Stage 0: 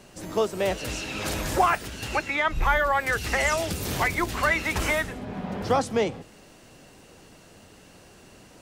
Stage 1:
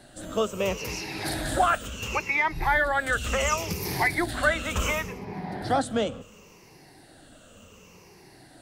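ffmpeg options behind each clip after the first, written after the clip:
-af "afftfilt=real='re*pow(10,12/40*sin(2*PI*(0.8*log(max(b,1)*sr/1024/100)/log(2)-(-0.7)*(pts-256)/sr)))':imag='im*pow(10,12/40*sin(2*PI*(0.8*log(max(b,1)*sr/1024/100)/log(2)-(-0.7)*(pts-256)/sr)))':win_size=1024:overlap=0.75,volume=0.75"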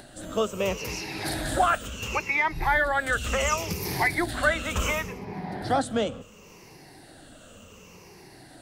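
-af "acompressor=mode=upward:threshold=0.00708:ratio=2.5"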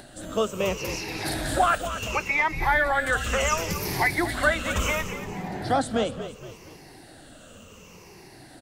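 -filter_complex "[0:a]asplit=5[s0][s1][s2][s3][s4];[s1]adelay=234,afreqshift=-49,volume=0.266[s5];[s2]adelay=468,afreqshift=-98,volume=0.117[s6];[s3]adelay=702,afreqshift=-147,volume=0.0513[s7];[s4]adelay=936,afreqshift=-196,volume=0.0226[s8];[s0][s5][s6][s7][s8]amix=inputs=5:normalize=0,volume=1.12"

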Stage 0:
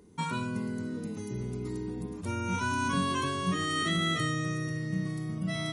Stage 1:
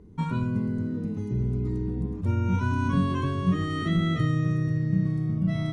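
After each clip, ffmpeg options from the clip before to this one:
-af "aemphasis=mode=reproduction:type=riaa,volume=0.841"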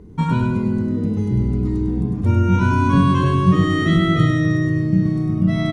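-af "aecho=1:1:100|200|300|400|500:0.531|0.239|0.108|0.0484|0.0218,volume=2.66"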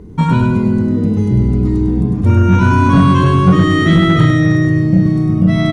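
-af "aeval=exprs='0.75*sin(PI/2*1.41*val(0)/0.75)':c=same"

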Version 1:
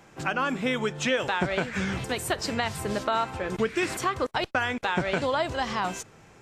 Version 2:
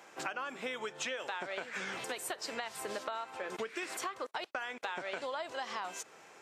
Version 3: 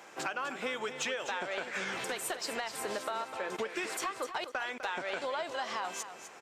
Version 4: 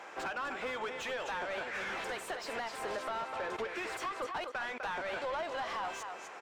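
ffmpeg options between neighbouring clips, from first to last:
-af "highpass=450,acompressor=threshold=0.0158:ratio=6"
-af "aeval=exprs='0.1*(cos(1*acos(clip(val(0)/0.1,-1,1)))-cos(1*PI/2))+0.01*(cos(5*acos(clip(val(0)/0.1,-1,1)))-cos(5*PI/2))':c=same,aecho=1:1:252|504|756:0.299|0.0627|0.0132"
-filter_complex "[0:a]asplit=2[s0][s1];[s1]highpass=f=720:p=1,volume=12.6,asoftclip=type=tanh:threshold=0.106[s2];[s0][s2]amix=inputs=2:normalize=0,lowpass=f=1500:p=1,volume=0.501,volume=0.422"

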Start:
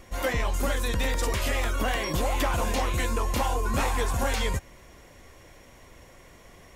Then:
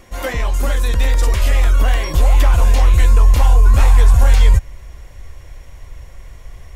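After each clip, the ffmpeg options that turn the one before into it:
-af "asubboost=boost=10:cutoff=76,volume=1.68"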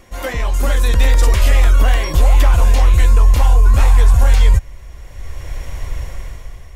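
-af "dynaudnorm=f=120:g=11:m=4.22,volume=0.891"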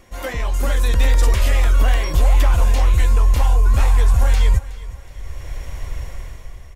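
-af "aecho=1:1:369|738|1107:0.133|0.0533|0.0213,volume=0.668"

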